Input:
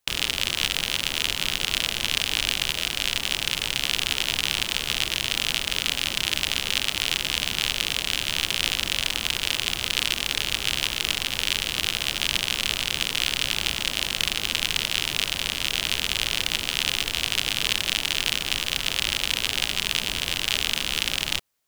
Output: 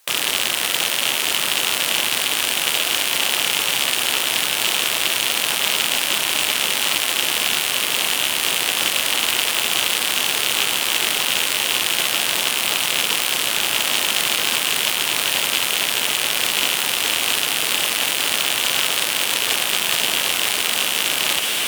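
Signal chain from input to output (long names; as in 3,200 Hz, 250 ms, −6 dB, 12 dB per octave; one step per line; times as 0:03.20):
sine wavefolder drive 14 dB, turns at −1.5 dBFS
high-shelf EQ 10,000 Hz +10.5 dB
on a send: feedback delay with all-pass diffusion 511 ms, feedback 75%, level −12 dB
on the sum: brickwall limiter −3.5 dBFS, peak gain reduction 11 dB
meter weighting curve A
level +1 dB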